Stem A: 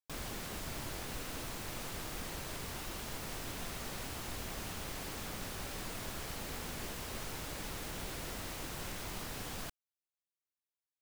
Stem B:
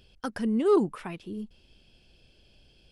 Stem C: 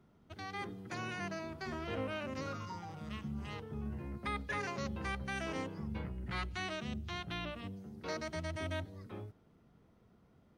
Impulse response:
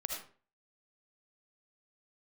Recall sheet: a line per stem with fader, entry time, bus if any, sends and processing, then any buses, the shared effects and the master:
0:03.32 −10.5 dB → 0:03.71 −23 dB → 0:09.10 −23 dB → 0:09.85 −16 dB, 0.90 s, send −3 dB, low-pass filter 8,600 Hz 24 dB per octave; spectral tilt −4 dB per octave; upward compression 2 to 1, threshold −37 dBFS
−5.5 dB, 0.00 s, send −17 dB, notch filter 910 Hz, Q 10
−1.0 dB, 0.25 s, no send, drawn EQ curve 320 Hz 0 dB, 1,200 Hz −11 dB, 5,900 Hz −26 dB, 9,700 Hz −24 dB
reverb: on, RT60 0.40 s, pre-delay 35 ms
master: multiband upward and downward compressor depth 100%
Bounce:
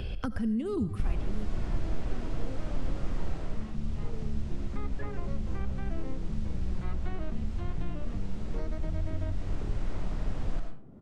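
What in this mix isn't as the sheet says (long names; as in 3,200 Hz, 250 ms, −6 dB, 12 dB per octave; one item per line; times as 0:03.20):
stem C: entry 0.25 s → 0.50 s
reverb return +8.5 dB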